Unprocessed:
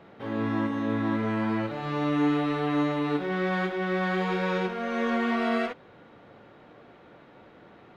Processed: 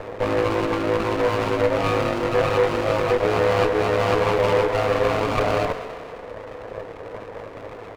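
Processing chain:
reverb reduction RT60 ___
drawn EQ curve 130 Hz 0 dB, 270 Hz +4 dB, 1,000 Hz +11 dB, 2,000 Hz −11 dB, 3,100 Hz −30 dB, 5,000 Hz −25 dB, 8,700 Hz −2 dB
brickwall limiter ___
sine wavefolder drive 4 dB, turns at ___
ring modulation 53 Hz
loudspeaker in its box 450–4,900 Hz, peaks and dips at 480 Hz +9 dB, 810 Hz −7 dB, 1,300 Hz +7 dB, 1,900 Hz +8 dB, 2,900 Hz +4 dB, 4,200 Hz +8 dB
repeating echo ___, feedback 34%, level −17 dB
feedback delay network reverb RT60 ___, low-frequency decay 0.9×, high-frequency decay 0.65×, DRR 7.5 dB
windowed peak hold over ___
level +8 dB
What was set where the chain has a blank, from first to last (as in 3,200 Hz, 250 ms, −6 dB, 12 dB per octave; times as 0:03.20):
1.3 s, −22.5 dBFS, −22.5 dBFS, 203 ms, 3 s, 17 samples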